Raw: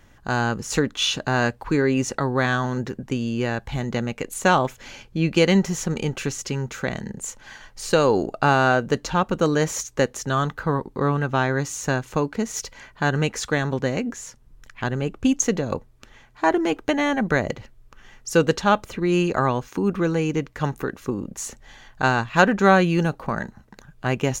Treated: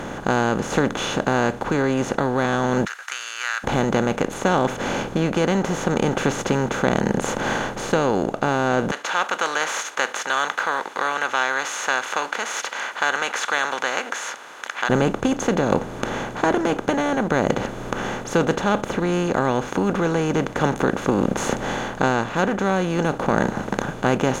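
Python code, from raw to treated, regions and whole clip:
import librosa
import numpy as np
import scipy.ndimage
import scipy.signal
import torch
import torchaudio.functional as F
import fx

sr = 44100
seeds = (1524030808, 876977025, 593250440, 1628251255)

y = fx.chain(x, sr, fx.cheby_ripple_highpass(hz=1300.0, ripple_db=3),
    fx.notch(hz=3400.0, q=7.5), at=(2.85, 3.64))
y = fx.chain(y, sr, fx.highpass(hz=1400.0, slope=24),
    fx.high_shelf(hz=8100.0, db=-11.5), at=(8.91, 14.9))
y = fx.bin_compress(y, sr, power=0.4)
y = fx.high_shelf(y, sr, hz=2000.0, db=-8.5)
y = fx.rider(y, sr, range_db=5, speed_s=0.5)
y = y * librosa.db_to_amplitude(-3.5)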